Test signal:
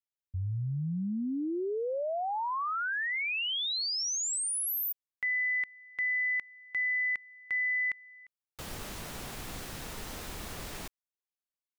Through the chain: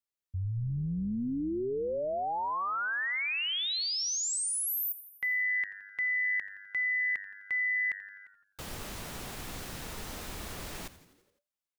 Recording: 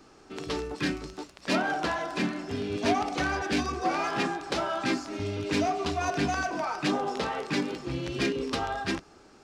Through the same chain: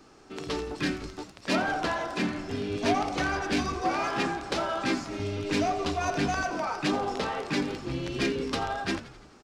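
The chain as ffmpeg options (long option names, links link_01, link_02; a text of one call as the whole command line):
ffmpeg -i in.wav -filter_complex "[0:a]asplit=7[link_01][link_02][link_03][link_04][link_05][link_06][link_07];[link_02]adelay=85,afreqshift=-99,volume=-15.5dB[link_08];[link_03]adelay=170,afreqshift=-198,volume=-19.9dB[link_09];[link_04]adelay=255,afreqshift=-297,volume=-24.4dB[link_10];[link_05]adelay=340,afreqshift=-396,volume=-28.8dB[link_11];[link_06]adelay=425,afreqshift=-495,volume=-33.2dB[link_12];[link_07]adelay=510,afreqshift=-594,volume=-37.7dB[link_13];[link_01][link_08][link_09][link_10][link_11][link_12][link_13]amix=inputs=7:normalize=0" out.wav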